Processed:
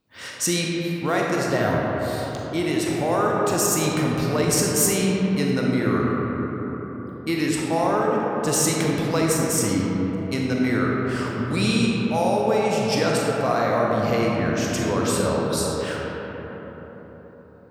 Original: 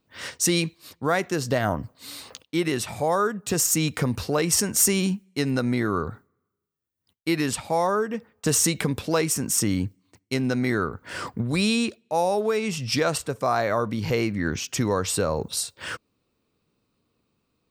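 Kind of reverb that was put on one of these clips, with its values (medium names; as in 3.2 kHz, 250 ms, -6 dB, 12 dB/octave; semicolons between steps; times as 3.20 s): algorithmic reverb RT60 4.8 s, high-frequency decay 0.35×, pre-delay 0 ms, DRR -3 dB; trim -2 dB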